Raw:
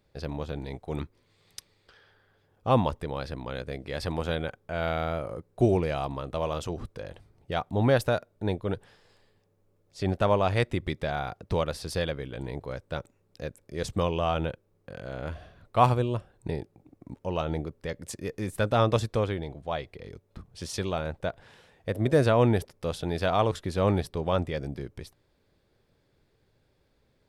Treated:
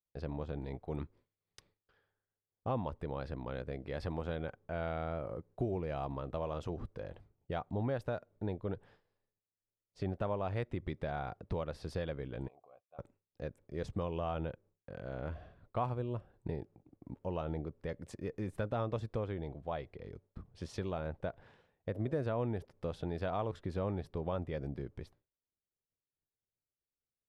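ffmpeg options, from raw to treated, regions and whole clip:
-filter_complex "[0:a]asettb=1/sr,asplit=3[a][b][c];[a]atrim=end=12.484[d];[b]atrim=start=12.48:end=12.99,asetpts=PTS-STARTPTS,afade=t=in:d=0.004:c=qsin,afade=t=out:st=0.506:d=0.004:c=qsin,acompressor=threshold=-35dB:ratio=10:attack=3.2:release=140:knee=1:detection=peak,asplit=3[e][f][g];[e]bandpass=f=730:t=q:w=8,volume=0dB[h];[f]bandpass=f=1.09k:t=q:w=8,volume=-6dB[i];[g]bandpass=f=2.44k:t=q:w=8,volume=-9dB[j];[h][i][j]amix=inputs=3:normalize=0[k];[c]atrim=start=12.986[l];[d][k]acrossfade=d=0.004:c1=hsin:c2=qsin[m];[m][l]acrossfade=d=0.004:c1=qsin:c2=hsin,agate=range=-33dB:threshold=-50dB:ratio=3:detection=peak,lowpass=f=1.4k:p=1,acompressor=threshold=-30dB:ratio=3,volume=-4dB"

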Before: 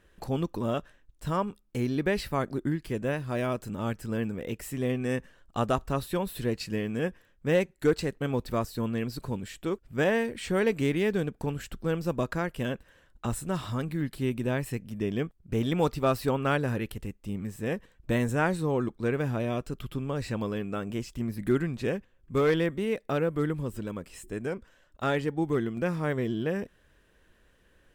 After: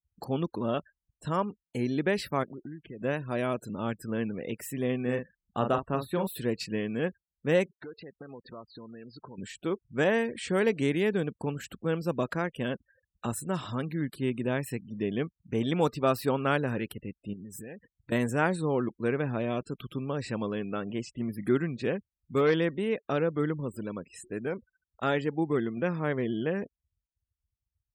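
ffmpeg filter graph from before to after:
-filter_complex "[0:a]asettb=1/sr,asplit=3[a][b][c];[a]atrim=end=2.434[d];[b]atrim=start=2.43:end=3.01,asetpts=PTS-STARTPTS,afade=t=in:d=0.004:c=qsin,afade=t=out:st=0.576:d=0.004:c=qsin,lowpass=3.1k,acompressor=threshold=-39dB:ratio=4:attack=3.2:release=140:knee=1:detection=peak[e];[c]atrim=start=3.006[f];[d][e]acrossfade=d=0.004:c1=hsin:c2=qsin[g];[g][f]acrossfade=d=0.004:c1=qsin:c2=hsin,asettb=1/sr,asplit=3[h][i][j];[h]atrim=end=5.024[k];[i]atrim=start=5.02:end=6.27,asetpts=PTS-STARTPTS,afade=t=in:d=0.004:c=qsin,afade=t=out:st=1.246:d=0.004:c=qsin,highshelf=f=3k:g=-7,asplit=2[l][m];[m]adelay=41,volume=-6.5dB[n];[l][n]amix=inputs=2:normalize=0,atrim=end_sample=55125[o];[j]atrim=start=6.266[p];[k][o]acrossfade=d=0.004:c1=hsin:c2=qsin[q];[q][p]acrossfade=d=0.004:c1=qsin:c2=hsin,asettb=1/sr,asplit=3[r][s][t];[r]atrim=end=7.744[u];[s]atrim=start=7.74:end=9.38,asetpts=PTS-STARTPTS,afade=t=in:d=0.004:c=qsin,afade=t=out:st=1.636:d=0.004:c=qsin,acompressor=threshold=-37dB:ratio=16:attack=3.2:release=140:knee=1:detection=peak,asplit=2[v][w];[w]highpass=f=720:p=1,volume=8dB,asoftclip=type=tanh:threshold=-29.5dB[x];[v][x]amix=inputs=2:normalize=0,lowpass=f=1.5k:p=1,volume=-6dB[y];[t]atrim=start=9.376[z];[u][y]acrossfade=d=0.004:c1=hsin:c2=qsin[aa];[aa][z]acrossfade=d=0.004:c1=qsin:c2=hsin,asettb=1/sr,asplit=3[ab][ac][ad];[ab]atrim=end=17.334[ae];[ac]atrim=start=17.33:end=18.12,asetpts=PTS-STARTPTS,afade=t=in:d=0.004:c=qsin,afade=t=out:st=0.786:d=0.004:c=qsin,highshelf=f=2.9k:g=6.5,acompressor=threshold=-37dB:ratio=16:attack=3.2:release=140:knee=1:detection=peak[af];[ad]atrim=start=18.116[ag];[ae][af]acrossfade=d=0.004:c1=hsin:c2=qsin[ah];[ah][ag]acrossfade=d=0.004:c1=qsin:c2=hsin,highshelf=f=11k:g=3,afftfilt=real='re*gte(hypot(re,im),0.00501)':imag='im*gte(hypot(re,im),0.00501)':win_size=1024:overlap=0.75,highpass=130"

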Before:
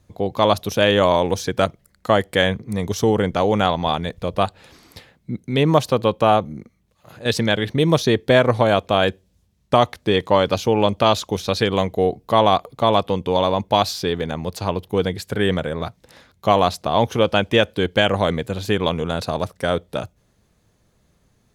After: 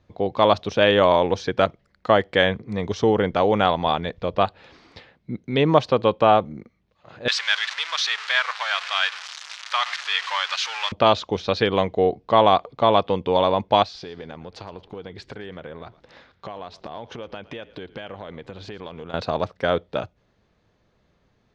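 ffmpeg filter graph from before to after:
-filter_complex "[0:a]asettb=1/sr,asplit=3[a][b][c];[a]atrim=end=7.284[d];[b]atrim=start=7.28:end=10.92,asetpts=PTS-STARTPTS,afade=t=in:d=0.004:c=qsin,afade=t=out:st=3.636:d=0.004:c=qsin,aeval=exprs='val(0)+0.5*0.106*sgn(val(0))':c=same,highpass=f=1.2k:w=0.5412,highpass=f=1.2k:w=1.3066,highshelf=f=5.7k:g=8[e];[c]atrim=start=10.916[f];[d][e]acrossfade=d=0.004:c1=hsin:c2=qsin[g];[g][f]acrossfade=d=0.004:c1=qsin:c2=hsin,asettb=1/sr,asplit=3[h][i][j];[h]atrim=end=13.834[k];[i]atrim=start=13.83:end=19.14,asetpts=PTS-STARTPTS,afade=t=in:d=0.004:c=qsin,afade=t=out:st=5.306:d=0.004:c=qsin,acompressor=threshold=-30dB:ratio=12:attack=3.2:release=140:knee=1:detection=peak,asplit=4[l][m][n][o];[m]adelay=114,afreqshift=-52,volume=-19dB[p];[n]adelay=228,afreqshift=-104,volume=-27.6dB[q];[o]adelay=342,afreqshift=-156,volume=-36.3dB[r];[l][p][q][r]amix=inputs=4:normalize=0,atrim=end_sample=234171[s];[j]atrim=start=19.136[t];[k][s]acrossfade=d=0.004:c1=hsin:c2=qsin[u];[u][t]acrossfade=d=0.004:c1=qsin:c2=hsin,lowpass=f=5.5k:w=0.5412,lowpass=f=5.5k:w=1.3066,bass=f=250:g=-5,treble=f=4k:g=-6"

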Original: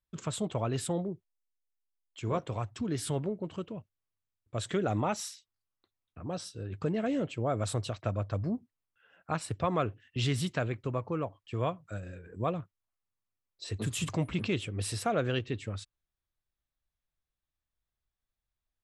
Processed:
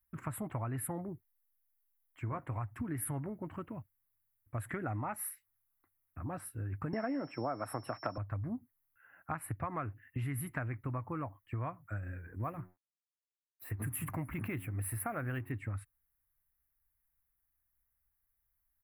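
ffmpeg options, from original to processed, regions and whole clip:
-filter_complex "[0:a]asettb=1/sr,asplit=3[a][b][c];[a]atrim=end=6.934[d];[b]atrim=start=6.93:end=8.18,asetpts=PTS-STARTPTS,afade=t=in:d=0.004:c=qsin,afade=t=out:st=1.246:d=0.004:c=qsin,highpass=f=140:w=0.5412,highpass=f=140:w=1.3066,equalizer=f=690:w=0.33:g=13.5,aeval=exprs='val(0)+0.0631*sin(2*PI*5400*n/s)':c=same[e];[c]atrim=start=8.176[f];[d][e]acrossfade=d=0.004:c1=hsin:c2=qsin[g];[g][f]acrossfade=d=0.004:c1=qsin:c2=hsin,asettb=1/sr,asplit=3[h][i][j];[h]atrim=end=12.394[k];[i]atrim=start=12.39:end=15.52,asetpts=PTS-STARTPTS,afade=t=in:d=0.004:c=qsin,afade=t=out:st=3.126:d=0.004:c=qsin,bandreject=f=90.48:t=h:w=4,bandreject=f=180.96:t=h:w=4,bandreject=f=271.44:t=h:w=4,bandreject=f=361.92:t=h:w=4,aeval=exprs='sgn(val(0))*max(abs(val(0))-0.00141,0)':c=same[l];[j]atrim=start=15.516[m];[k][l]acrossfade=d=0.004:c1=hsin:c2=qsin[n];[n][m]acrossfade=d=0.004:c1=qsin:c2=hsin,firequalizer=gain_entry='entry(120,0);entry(190,-10);entry(270,-1);entry(430,-14);entry(800,-2);entry(2000,1);entry(3400,-27);entry(6600,-28);entry(11000,13)':delay=0.05:min_phase=1,acompressor=threshold=-38dB:ratio=6,volume=3.5dB"

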